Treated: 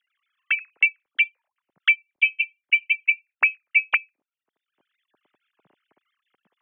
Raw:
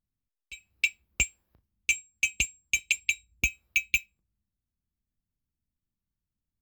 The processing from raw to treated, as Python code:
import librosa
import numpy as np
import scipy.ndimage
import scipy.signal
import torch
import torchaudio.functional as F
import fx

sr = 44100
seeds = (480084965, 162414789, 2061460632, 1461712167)

y = fx.sine_speech(x, sr)
y = fx.band_squash(y, sr, depth_pct=100)
y = y * librosa.db_to_amplitude(7.5)